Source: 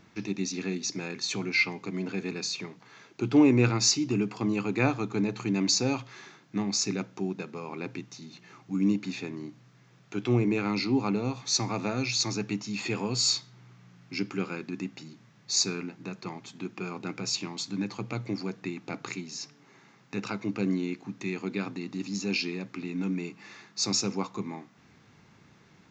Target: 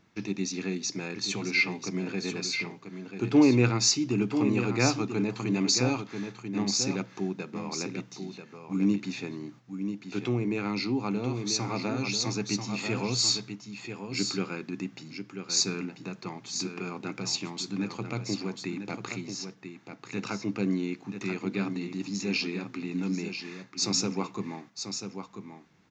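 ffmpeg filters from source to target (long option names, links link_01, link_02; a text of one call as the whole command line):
ffmpeg -i in.wav -filter_complex "[0:a]agate=range=-7dB:threshold=-49dB:ratio=16:detection=peak,aecho=1:1:989:0.398,asettb=1/sr,asplit=3[link_01][link_02][link_03];[link_01]atrim=end=10.224[link_04];[link_02]atrim=start=10.22:end=12.23,asetpts=PTS-STARTPTS,afade=type=in:duration=0.004:curve=qsin,afade=type=out:start_time=2.006:duration=0.004:curve=qsin,acompressor=threshold=-27dB:ratio=2[link_05];[link_03]atrim=start=12.226[link_06];[link_04][link_05]acrossfade=duration=0.004:curve1=hsin:curve2=qsin[link_07];[link_07][link_06]acrossfade=duration=0.004:curve1=qsin:curve2=hsin" out.wav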